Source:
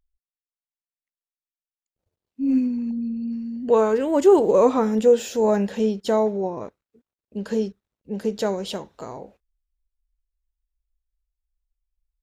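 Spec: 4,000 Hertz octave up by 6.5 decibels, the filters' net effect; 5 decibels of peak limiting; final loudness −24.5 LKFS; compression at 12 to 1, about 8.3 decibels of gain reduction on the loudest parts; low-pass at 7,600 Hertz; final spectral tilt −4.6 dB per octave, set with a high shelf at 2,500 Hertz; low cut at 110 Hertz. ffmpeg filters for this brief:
ffmpeg -i in.wav -af "highpass=110,lowpass=7600,highshelf=frequency=2500:gain=4,equalizer=frequency=4000:width_type=o:gain=5,acompressor=threshold=-18dB:ratio=12,volume=2dB,alimiter=limit=-14.5dB:level=0:latency=1" out.wav

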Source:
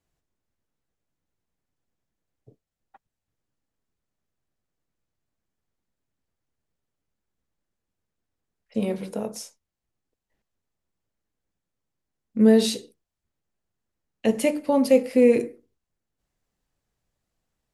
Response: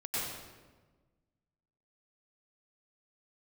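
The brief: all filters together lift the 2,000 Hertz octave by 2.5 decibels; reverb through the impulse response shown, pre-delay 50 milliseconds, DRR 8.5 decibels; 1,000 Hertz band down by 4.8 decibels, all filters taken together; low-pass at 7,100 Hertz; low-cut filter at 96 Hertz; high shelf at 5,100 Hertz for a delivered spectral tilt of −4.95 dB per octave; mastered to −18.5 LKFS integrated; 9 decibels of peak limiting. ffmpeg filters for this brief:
-filter_complex "[0:a]highpass=96,lowpass=7100,equalizer=frequency=1000:width_type=o:gain=-7,equalizer=frequency=2000:width_type=o:gain=5.5,highshelf=frequency=5100:gain=-6.5,alimiter=limit=-15.5dB:level=0:latency=1,asplit=2[link_01][link_02];[1:a]atrim=start_sample=2205,adelay=50[link_03];[link_02][link_03]afir=irnorm=-1:irlink=0,volume=-13.5dB[link_04];[link_01][link_04]amix=inputs=2:normalize=0,volume=9dB"

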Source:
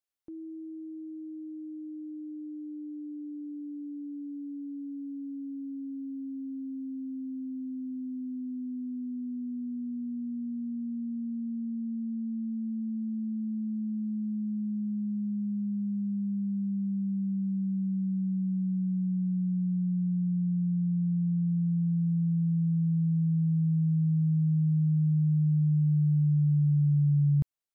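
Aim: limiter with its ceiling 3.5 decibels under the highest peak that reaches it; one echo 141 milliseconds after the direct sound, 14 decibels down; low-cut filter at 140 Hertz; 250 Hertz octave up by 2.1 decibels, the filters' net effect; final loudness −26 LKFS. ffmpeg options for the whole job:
ffmpeg -i in.wav -af "highpass=140,equalizer=frequency=250:width_type=o:gain=5,alimiter=limit=-24dB:level=0:latency=1,aecho=1:1:141:0.2,volume=4dB" out.wav

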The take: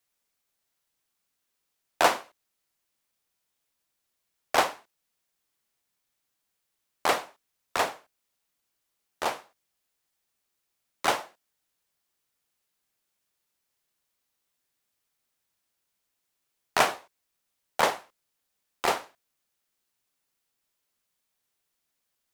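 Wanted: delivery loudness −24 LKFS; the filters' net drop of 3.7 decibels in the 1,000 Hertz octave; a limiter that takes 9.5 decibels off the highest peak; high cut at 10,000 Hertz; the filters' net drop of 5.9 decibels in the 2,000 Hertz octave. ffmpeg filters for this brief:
ffmpeg -i in.wav -af "lowpass=10000,equalizer=frequency=1000:width_type=o:gain=-3.5,equalizer=frequency=2000:width_type=o:gain=-6.5,volume=11dB,alimiter=limit=-7dB:level=0:latency=1" out.wav

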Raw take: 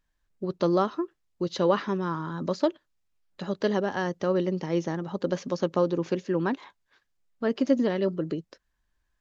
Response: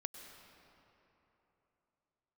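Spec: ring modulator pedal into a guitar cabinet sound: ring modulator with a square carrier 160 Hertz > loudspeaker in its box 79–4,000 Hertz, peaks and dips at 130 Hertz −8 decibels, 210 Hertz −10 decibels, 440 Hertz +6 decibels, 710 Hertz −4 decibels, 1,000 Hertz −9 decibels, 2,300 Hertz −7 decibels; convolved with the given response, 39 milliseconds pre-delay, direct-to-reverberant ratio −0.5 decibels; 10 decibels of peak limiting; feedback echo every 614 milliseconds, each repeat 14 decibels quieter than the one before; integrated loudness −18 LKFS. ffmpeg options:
-filter_complex "[0:a]alimiter=limit=-20dB:level=0:latency=1,aecho=1:1:614|1228:0.2|0.0399,asplit=2[link_01][link_02];[1:a]atrim=start_sample=2205,adelay=39[link_03];[link_02][link_03]afir=irnorm=-1:irlink=0,volume=3dB[link_04];[link_01][link_04]amix=inputs=2:normalize=0,aeval=exprs='val(0)*sgn(sin(2*PI*160*n/s))':channel_layout=same,highpass=79,equalizer=frequency=130:width_type=q:width=4:gain=-8,equalizer=frequency=210:width_type=q:width=4:gain=-10,equalizer=frequency=440:width_type=q:width=4:gain=6,equalizer=frequency=710:width_type=q:width=4:gain=-4,equalizer=frequency=1000:width_type=q:width=4:gain=-9,equalizer=frequency=2300:width_type=q:width=4:gain=-7,lowpass=frequency=4000:width=0.5412,lowpass=frequency=4000:width=1.3066,volume=12dB"

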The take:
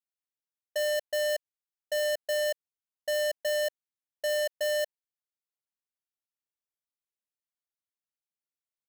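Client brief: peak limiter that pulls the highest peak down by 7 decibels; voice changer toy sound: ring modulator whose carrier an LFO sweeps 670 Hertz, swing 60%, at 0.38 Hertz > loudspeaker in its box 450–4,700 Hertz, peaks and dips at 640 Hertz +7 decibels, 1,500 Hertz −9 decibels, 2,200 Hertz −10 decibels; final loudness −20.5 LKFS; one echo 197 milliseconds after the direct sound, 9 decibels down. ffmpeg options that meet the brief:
ffmpeg -i in.wav -af "alimiter=level_in=10.5dB:limit=-24dB:level=0:latency=1,volume=-10.5dB,aecho=1:1:197:0.355,aeval=exprs='val(0)*sin(2*PI*670*n/s+670*0.6/0.38*sin(2*PI*0.38*n/s))':channel_layout=same,highpass=450,equalizer=frequency=640:width_type=q:width=4:gain=7,equalizer=frequency=1500:width_type=q:width=4:gain=-9,equalizer=frequency=2200:width_type=q:width=4:gain=-10,lowpass=frequency=4700:width=0.5412,lowpass=frequency=4700:width=1.3066,volume=23.5dB" out.wav

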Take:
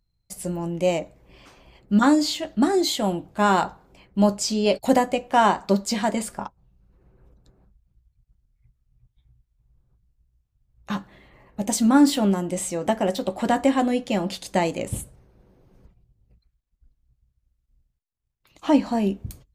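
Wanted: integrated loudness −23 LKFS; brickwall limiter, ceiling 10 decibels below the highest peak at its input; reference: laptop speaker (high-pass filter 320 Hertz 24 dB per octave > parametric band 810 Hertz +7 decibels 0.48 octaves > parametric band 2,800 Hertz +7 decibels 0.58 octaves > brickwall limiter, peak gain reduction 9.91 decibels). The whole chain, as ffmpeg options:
ffmpeg -i in.wav -af "alimiter=limit=-15.5dB:level=0:latency=1,highpass=frequency=320:width=0.5412,highpass=frequency=320:width=1.3066,equalizer=frequency=810:width_type=o:width=0.48:gain=7,equalizer=frequency=2800:width_type=o:width=0.58:gain=7,volume=7.5dB,alimiter=limit=-12.5dB:level=0:latency=1" out.wav

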